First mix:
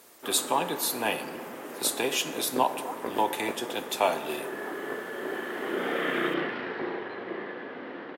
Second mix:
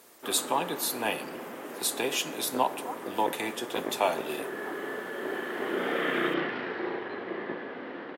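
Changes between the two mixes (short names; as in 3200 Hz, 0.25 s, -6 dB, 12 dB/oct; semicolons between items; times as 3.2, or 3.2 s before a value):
speech: send -6.5 dB; second sound: entry +0.70 s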